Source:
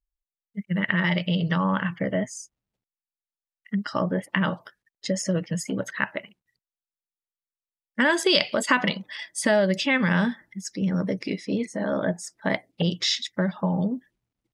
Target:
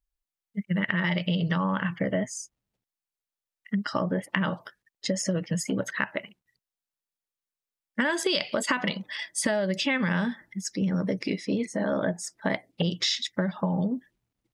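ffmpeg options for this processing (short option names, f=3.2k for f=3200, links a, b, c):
-af "acompressor=threshold=-24dB:ratio=6,volume=1.5dB"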